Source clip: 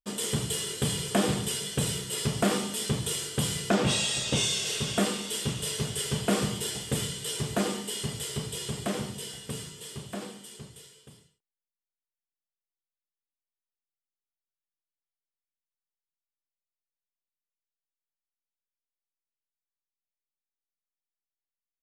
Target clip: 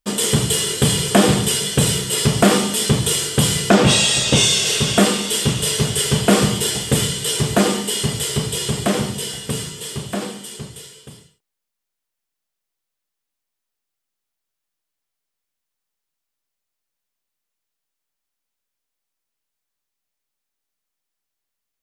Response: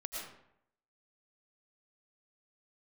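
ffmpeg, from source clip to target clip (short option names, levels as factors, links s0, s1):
-af "acontrast=61,volume=2"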